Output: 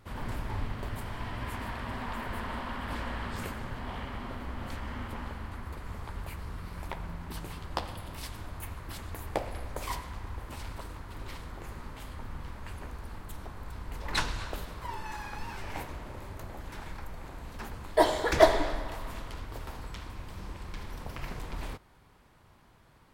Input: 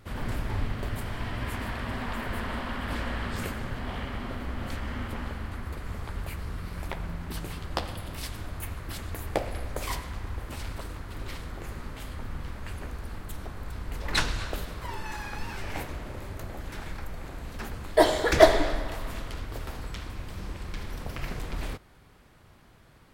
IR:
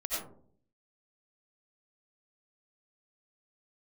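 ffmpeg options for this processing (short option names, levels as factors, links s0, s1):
-af "equalizer=f=950:t=o:w=0.49:g=5.5,volume=0.596"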